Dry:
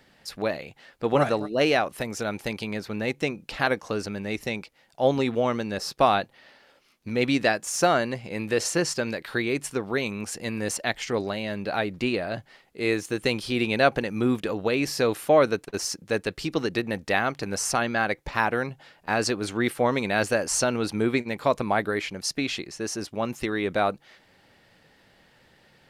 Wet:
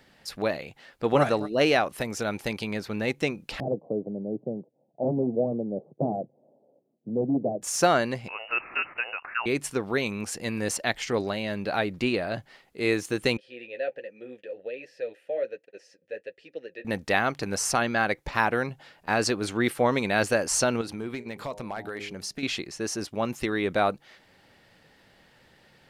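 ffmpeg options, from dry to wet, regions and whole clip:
-filter_complex "[0:a]asettb=1/sr,asplit=3[s0][s1][s2];[s0]atrim=end=3.604[s3];[s1]atrim=start=3.6:end=7.62,asetpts=PTS-STARTPTS,afade=t=in:d=0.004:c=qsin,afade=t=out:st=4.016:d=0.004:c=qsin,aeval=exprs='(mod(5.01*val(0)+1,2)-1)/5.01':c=same,asuperpass=centerf=290:order=12:qfactor=0.5[s4];[s2]atrim=start=7.616[s5];[s3][s4]acrossfade=d=0.004:c1=hsin:c2=qsin[s6];[s6][s5]acrossfade=d=0.004:c1=qsin:c2=hsin,asettb=1/sr,asplit=3[s7][s8][s9];[s7]atrim=end=8.284[s10];[s8]atrim=start=8.28:end=9.46,asetpts=PTS-STARTPTS,afade=t=in:d=0.004:c=qsin,afade=t=out:st=1.176:d=0.004:c=qsin,highpass=530,lowpass=f=2600:t=q:w=0.5098,lowpass=f=2600:t=q:w=0.6013,lowpass=f=2600:t=q:w=0.9,lowpass=f=2600:t=q:w=2.563,afreqshift=-3100,acompressor=mode=upward:threshold=0.0178:ratio=2.5:attack=3.2:release=140:knee=2.83:detection=peak[s11];[s9]atrim=start=9.456[s12];[s10][s11]acrossfade=d=0.004:c1=hsin:c2=qsin[s13];[s13][s12]acrossfade=d=0.004:c1=qsin:c2=hsin,asettb=1/sr,asplit=3[s14][s15][s16];[s14]atrim=end=13.374[s17];[s15]atrim=start=13.37:end=16.85,asetpts=PTS-STARTPTS,afade=t=in:d=0.004:c=qsin,afade=t=out:st=3.476:d=0.004:c=qsin,flanger=delay=3.8:depth=8.3:regen=-32:speed=1.3:shape=triangular,asplit=3[s18][s19][s20];[s18]bandpass=f=530:t=q:w=8,volume=1[s21];[s19]bandpass=f=1840:t=q:w=8,volume=0.501[s22];[s20]bandpass=f=2480:t=q:w=8,volume=0.355[s23];[s21][s22][s23]amix=inputs=3:normalize=0[s24];[s16]atrim=start=16.846[s25];[s17][s24]acrossfade=d=0.004:c1=hsin:c2=qsin[s26];[s26][s25]acrossfade=d=0.004:c1=qsin:c2=hsin,asettb=1/sr,asplit=3[s27][s28][s29];[s27]atrim=end=20.814[s30];[s28]atrim=start=20.81:end=22.43,asetpts=PTS-STARTPTS,afade=t=in:d=0.004:c=qsin,afade=t=out:st=1.616:d=0.004:c=qsin,bandreject=f=102.2:t=h:w=4,bandreject=f=204.4:t=h:w=4,bandreject=f=306.6:t=h:w=4,bandreject=f=408.8:t=h:w=4,bandreject=f=511:t=h:w=4,bandreject=f=613.2:t=h:w=4,bandreject=f=715.4:t=h:w=4,bandreject=f=817.6:t=h:w=4,bandreject=f=919.8:t=h:w=4,acompressor=threshold=0.02:ratio=2.5:attack=3.2:release=140:knee=1:detection=peak,volume=18.8,asoftclip=hard,volume=0.0531[s31];[s29]atrim=start=22.426[s32];[s30][s31]acrossfade=d=0.004:c1=hsin:c2=qsin[s33];[s33][s32]acrossfade=d=0.004:c1=qsin:c2=hsin"

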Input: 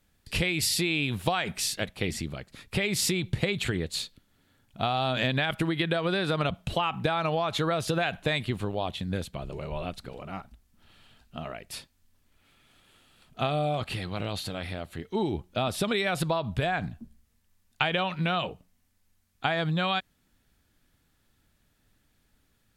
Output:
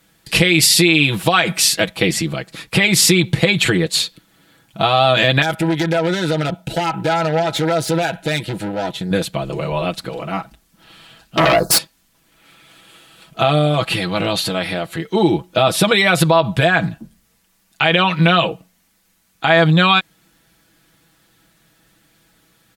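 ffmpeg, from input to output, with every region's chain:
-filter_complex "[0:a]asettb=1/sr,asplit=3[s0][s1][s2];[s0]atrim=end=5.424[s3];[s1]atrim=start=5.42:end=9.11,asetpts=PTS-STARTPTS,afade=t=in:d=0.004:c=qsin,afade=t=out:st=3.686:d=0.004:c=qsin,equalizer=f=2700:w=1.4:g=-5,aeval=exprs='(tanh(28.2*val(0)+0.65)-tanh(0.65))/28.2':c=same,asuperstop=centerf=1100:order=20:qfactor=5.4[s4];[s2]atrim=start=9.106[s5];[s3][s4]acrossfade=d=0.004:c1=hsin:c2=qsin[s6];[s6][s5]acrossfade=d=0.004:c1=qsin:c2=hsin,asettb=1/sr,asplit=3[s7][s8][s9];[s7]atrim=end=11.374[s10];[s8]atrim=start=11.37:end=11.78,asetpts=PTS-STARTPTS,afade=t=in:d=0.004:c=qsin,afade=t=out:st=0.406:d=0.004:c=qsin,asuperstop=centerf=2500:order=12:qfactor=0.95,aeval=exprs='0.0668*sin(PI/2*5.01*val(0)/0.0668)':c=same[s11];[s9]atrim=start=11.776[s12];[s10][s11]acrossfade=d=0.004:c1=hsin:c2=qsin[s13];[s13][s12]acrossfade=d=0.004:c1=qsin:c2=hsin,highpass=f=170:p=1,aecho=1:1:6.1:0.71,alimiter=level_in=5.31:limit=0.891:release=50:level=0:latency=1,volume=0.891"

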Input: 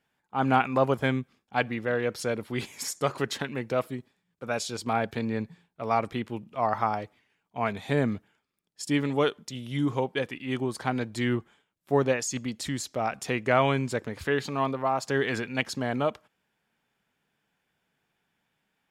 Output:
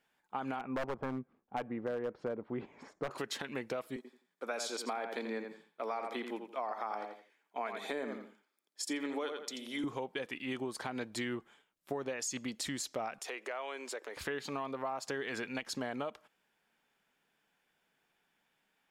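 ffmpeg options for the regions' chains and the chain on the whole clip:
-filter_complex "[0:a]asettb=1/sr,asplit=3[s0][s1][s2];[s0]atrim=end=0.594[s3];[s1]atrim=start=0.59:end=3.11,asetpts=PTS-STARTPTS,afade=t=in:d=0.004:c=qsin,afade=t=out:st=2.516:d=0.004:c=qsin,lowpass=1000,lowshelf=f=370:g=2.5,aeval=exprs='0.112*(abs(mod(val(0)/0.112+3,4)-2)-1)':c=same[s4];[s2]atrim=start=3.106[s5];[s3][s4]acrossfade=d=0.004:c1=hsin:c2=qsin[s6];[s6][s5]acrossfade=d=0.004:c1=qsin:c2=hsin,asettb=1/sr,asplit=3[s7][s8][s9];[s7]atrim=end=3.964[s10];[s8]atrim=start=3.96:end=9.84,asetpts=PTS-STARTPTS,afade=t=in:d=0.004:c=qsin,afade=t=out:st=5.876:d=0.004:c=qsin,highpass=f=250:w=0.5412,highpass=f=250:w=1.3066,bandreject=f=2800:w=9.8,asplit=2[s11][s12];[s12]adelay=85,lowpass=f=4200:p=1,volume=0.398,asplit=2[s13][s14];[s14]adelay=85,lowpass=f=4200:p=1,volume=0.24,asplit=2[s15][s16];[s16]adelay=85,lowpass=f=4200:p=1,volume=0.24[s17];[s11][s13][s15][s17]amix=inputs=4:normalize=0,atrim=end_sample=259308[s18];[s9]atrim=start=9.836[s19];[s10][s18]acrossfade=d=0.004:c1=hsin:c2=qsin[s20];[s20][s19]acrossfade=d=0.004:c1=qsin:c2=hsin,asettb=1/sr,asplit=3[s21][s22][s23];[s21]atrim=end=13.184[s24];[s22]atrim=start=13.18:end=14.17,asetpts=PTS-STARTPTS,afade=t=in:d=0.004:c=qsin,afade=t=out:st=0.986:d=0.004:c=qsin,highpass=f=370:w=0.5412,highpass=f=370:w=1.3066,acompressor=threshold=0.0112:ratio=3:attack=3.2:release=140:knee=1:detection=peak[s25];[s23]atrim=start=14.166[s26];[s24][s25]acrossfade=d=0.004:c1=hsin:c2=qsin[s27];[s27][s26]acrossfade=d=0.004:c1=qsin:c2=hsin,equalizer=f=95:w=0.73:g=-12.5,alimiter=limit=0.106:level=0:latency=1:release=146,acompressor=threshold=0.0178:ratio=4"

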